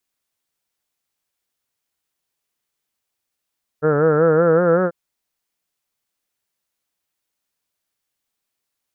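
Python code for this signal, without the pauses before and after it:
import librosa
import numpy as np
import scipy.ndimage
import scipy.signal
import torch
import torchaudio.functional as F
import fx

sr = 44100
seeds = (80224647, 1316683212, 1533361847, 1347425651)

y = fx.vowel(sr, seeds[0], length_s=1.09, word='heard', hz=147.0, glide_st=3.5, vibrato_hz=5.3, vibrato_st=0.9)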